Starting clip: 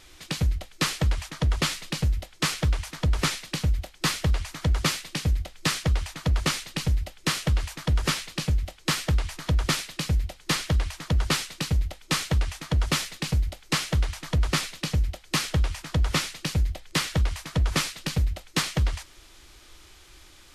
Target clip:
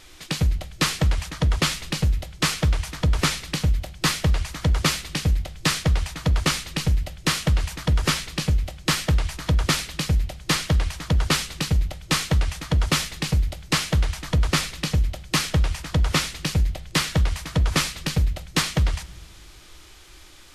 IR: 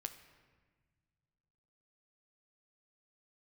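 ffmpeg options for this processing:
-filter_complex "[0:a]asplit=2[a][b];[1:a]atrim=start_sample=2205,asetrate=61740,aresample=44100[c];[b][c]afir=irnorm=-1:irlink=0,volume=0dB[d];[a][d]amix=inputs=2:normalize=0"

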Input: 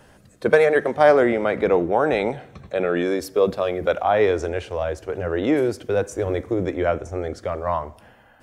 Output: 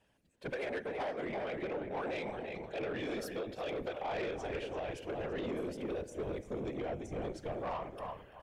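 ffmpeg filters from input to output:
-filter_complex "[0:a]equalizer=f=1.3k:t=o:w=0.22:g=-7,asplit=2[a][b];[b]adelay=338,lowpass=f=3k:p=1,volume=-8.5dB,asplit=2[c][d];[d]adelay=338,lowpass=f=3k:p=1,volume=0.25,asplit=2[e][f];[f]adelay=338,lowpass=f=3k:p=1,volume=0.25[g];[a][c][e][g]amix=inputs=4:normalize=0,dynaudnorm=f=770:g=5:m=9.5dB,agate=range=-8dB:threshold=-48dB:ratio=16:detection=peak,asettb=1/sr,asplit=3[h][i][j];[h]atrim=end=5.434[k];[i]atrim=start=5.43:end=7.62,asetpts=PTS-STARTPTS,afade=t=in:d=0.004:c=qsin,afade=t=out:st=2.186:d=0.004:c=qsin,acrossover=split=830|2700|7700[l][m][n][o];[l]acompressor=threshold=-15dB:ratio=4[p];[m]acompressor=threshold=-41dB:ratio=4[q];[n]acompressor=threshold=-44dB:ratio=4[r];[o]acompressor=threshold=-46dB:ratio=4[s];[p][q][r][s]amix=inputs=4:normalize=0[t];[j]atrim=start=7.616[u];[k][t]acrossfade=d=0.004:c1=hsin:c2=qsin[v];[v][u]acrossfade=d=0.004:c1=qsin:c2=hsin,tremolo=f=150:d=0.571,afftfilt=real='hypot(re,im)*cos(2*PI*random(0))':imag='hypot(re,im)*sin(2*PI*random(1))':win_size=512:overlap=0.75,alimiter=limit=-18dB:level=0:latency=1:release=292,equalizer=f=2.8k:t=o:w=0.86:g=8,asoftclip=type=tanh:threshold=-25.5dB,volume=-6.5dB"

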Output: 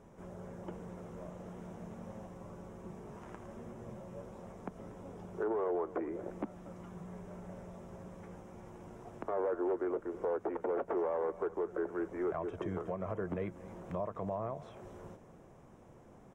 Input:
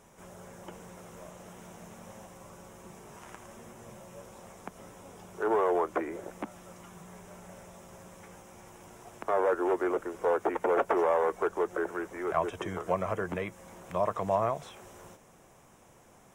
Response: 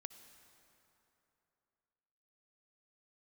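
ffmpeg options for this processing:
-filter_complex "[0:a]firequalizer=gain_entry='entry(330,0);entry(790,-6);entry(2600,-13);entry(11000,-21)':delay=0.05:min_phase=1,alimiter=level_in=6.5dB:limit=-24dB:level=0:latency=1:release=384,volume=-6.5dB,asplit=2[a][b];[b]aecho=0:1:238:0.141[c];[a][c]amix=inputs=2:normalize=0,volume=3.5dB"

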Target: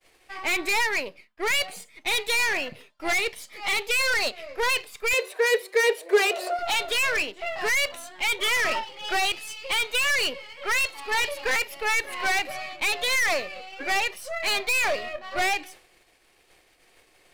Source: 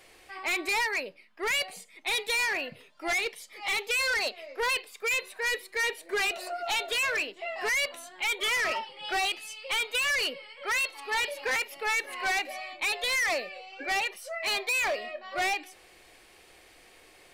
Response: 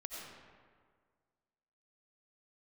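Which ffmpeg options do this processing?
-filter_complex "[0:a]aeval=exprs='if(lt(val(0),0),0.447*val(0),val(0))':c=same,agate=range=-33dB:threshold=-50dB:ratio=3:detection=peak,asettb=1/sr,asplit=3[a][b][c];[a]atrim=end=5.134[d];[b]atrim=start=5.13:end=6.59,asetpts=PTS-STARTPTS,afade=t=in:d=0.004:c=qsin,afade=t=out:st=1.456:d=0.004:c=qsin,highpass=f=450:t=q:w=3.6[e];[c]atrim=start=6.586[f];[d][e]acrossfade=d=0.004:c1=hsin:c2=qsin[g];[g][f]acrossfade=d=0.004:c1=qsin:c2=hsin,volume=6.5dB"

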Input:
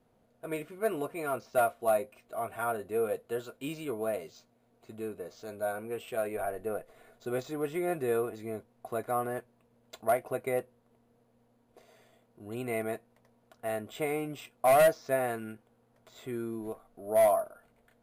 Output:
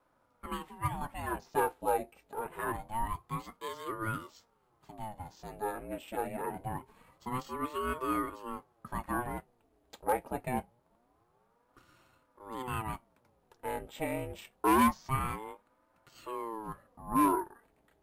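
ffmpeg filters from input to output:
-af "aeval=exprs='val(0)*sin(2*PI*470*n/s+470*0.65/0.25*sin(2*PI*0.25*n/s))':c=same"

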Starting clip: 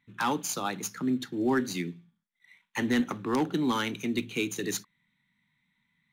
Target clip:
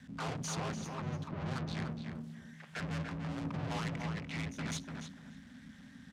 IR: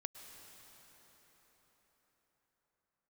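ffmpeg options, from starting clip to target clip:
-filter_complex "[0:a]aeval=exprs='val(0)+0.5*0.0112*sgn(val(0))':c=same,afwtdn=0.0126,asettb=1/sr,asplit=3[a][b][c];[a]atrim=end=1.284[d];[b]atrim=start=1.28:end=1.82,asetpts=PTS-STARTPTS,afade=t=in:d=0.004:c=qsin,afade=t=out:st=0.536:d=0.004:c=qsin,aemphasis=mode=reproduction:type=75kf[e];[c]atrim=start=1.816[f];[d][e]acrossfade=d=0.004:c1=hsin:c2=qsin[g];[g][f]acrossfade=d=0.004:c1=qsin:c2=hsin,asettb=1/sr,asplit=3[h][i][j];[h]atrim=end=3.954[k];[i]atrim=start=3.95:end=4.54,asetpts=PTS-STARTPTS,afade=t=in:d=0.004:c=qsin,afade=t=out:st=0.586:d=0.004:c=qsin,acompressor=threshold=-34dB:ratio=2.5[l];[j]atrim=start=4.536[m];[k][l]acrossfade=d=0.004:c1=hsin:c2=qsin[n];[n][m]acrossfade=d=0.004:c1=qsin:c2=hsin,aeval=exprs='(tanh(100*val(0)+0.65)-tanh(0.65))/100':c=same,aeval=exprs='val(0)*sin(2*PI*120*n/s)':c=same,asettb=1/sr,asplit=3[o][p][q];[o]atrim=end=3.024[r];[p]atrim=start=3.02:end=3.45,asetpts=PTS-STARTPTS,afade=t=in:d=0.004:c=qsin,afade=t=out:st=0.426:d=0.004:c=qsin,aeval=exprs='max(val(0),0)':c=same[s];[q]atrim=start=3.446[t];[r][s]acrossfade=d=0.004:c1=hsin:c2=qsin[u];[u][t]acrossfade=d=0.004:c1=qsin:c2=hsin,afreqshift=-280,highpass=110,lowpass=7.8k,asplit=2[v][w];[w]adelay=293,lowpass=f=3.1k:p=1,volume=-4.5dB,asplit=2[x][y];[y]adelay=293,lowpass=f=3.1k:p=1,volume=0.22,asplit=2[z][aa];[aa]adelay=293,lowpass=f=3.1k:p=1,volume=0.22[ab];[v][x][z][ab]amix=inputs=4:normalize=0,volume=6dB"

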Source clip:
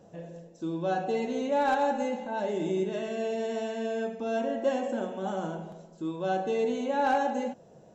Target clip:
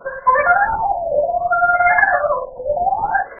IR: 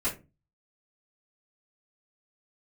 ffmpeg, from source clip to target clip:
-filter_complex "[0:a]acontrast=73,asetrate=58866,aresample=44100,atempo=0.749154,aresample=8000,acrusher=bits=4:mode=log:mix=0:aa=0.000001,aresample=44100,tremolo=f=7.6:d=0.58[a];[1:a]atrim=start_sample=2205[b];[a][b]afir=irnorm=-1:irlink=0,asetrate=103194,aresample=44100,afftfilt=real='re*lt(b*sr/1024,900*pow(2300/900,0.5+0.5*sin(2*PI*0.65*pts/sr)))':imag='im*lt(b*sr/1024,900*pow(2300/900,0.5+0.5*sin(2*PI*0.65*pts/sr)))':win_size=1024:overlap=0.75,volume=5dB"

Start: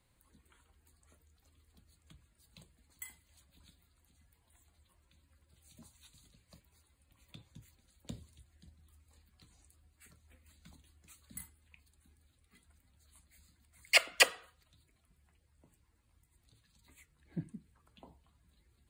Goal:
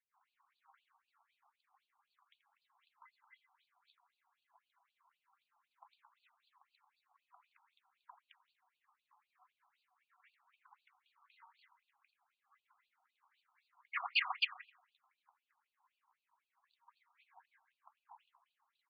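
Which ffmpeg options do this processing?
-filter_complex "[0:a]equalizer=f=500:t=o:w=1:g=5,equalizer=f=1k:t=o:w=1:g=10,equalizer=f=4k:t=o:w=1:g=-4,equalizer=f=8k:t=o:w=1:g=-12,asplit=2[a][b];[b]adelay=84,lowpass=f=1.8k:p=1,volume=-7dB,asplit=2[c][d];[d]adelay=84,lowpass=f=1.8k:p=1,volume=0.42,asplit=2[e][f];[f]adelay=84,lowpass=f=1.8k:p=1,volume=0.42,asplit=2[g][h];[h]adelay=84,lowpass=f=1.8k:p=1,volume=0.42,asplit=2[i][j];[j]adelay=84,lowpass=f=1.8k:p=1,volume=0.42[k];[c][e][g][i][k]amix=inputs=5:normalize=0[l];[a][l]amix=inputs=2:normalize=0,alimiter=limit=-14dB:level=0:latency=1:release=388,equalizer=f=240:t=o:w=2.7:g=9.5,acrossover=split=350|1600[m][n][o];[o]adelay=220[p];[m]adelay=440[q];[q][n][p]amix=inputs=3:normalize=0,afftfilt=real='re*between(b*sr/1024,960*pow(3500/960,0.5+0.5*sin(2*PI*3.9*pts/sr))/1.41,960*pow(3500/960,0.5+0.5*sin(2*PI*3.9*pts/sr))*1.41)':imag='im*between(b*sr/1024,960*pow(3500/960,0.5+0.5*sin(2*PI*3.9*pts/sr))/1.41,960*pow(3500/960,0.5+0.5*sin(2*PI*3.9*pts/sr))*1.41)':win_size=1024:overlap=0.75"

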